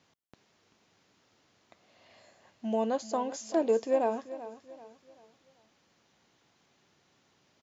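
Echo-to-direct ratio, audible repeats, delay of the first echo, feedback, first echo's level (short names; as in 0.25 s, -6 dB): -14.0 dB, 3, 0.386 s, 38%, -14.5 dB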